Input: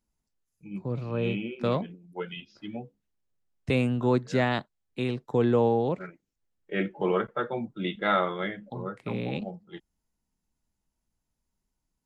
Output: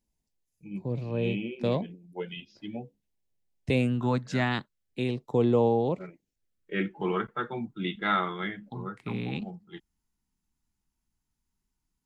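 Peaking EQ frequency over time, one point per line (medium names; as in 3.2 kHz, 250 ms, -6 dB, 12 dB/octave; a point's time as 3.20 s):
peaking EQ -14.5 dB 0.45 oct
3.77 s 1.3 kHz
4.15 s 340 Hz
5.21 s 1.6 kHz
6.05 s 1.6 kHz
6.90 s 560 Hz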